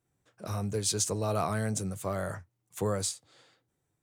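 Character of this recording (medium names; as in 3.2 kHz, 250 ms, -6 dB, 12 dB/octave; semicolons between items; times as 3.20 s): tremolo triangle 0.89 Hz, depth 30%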